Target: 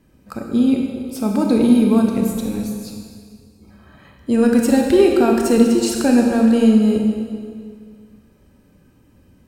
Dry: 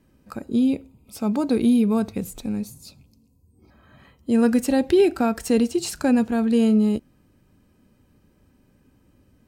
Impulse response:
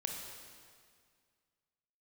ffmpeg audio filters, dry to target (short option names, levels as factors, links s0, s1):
-filter_complex "[0:a]acontrast=29[s0];[1:a]atrim=start_sample=2205[s1];[s0][s1]afir=irnorm=-1:irlink=0"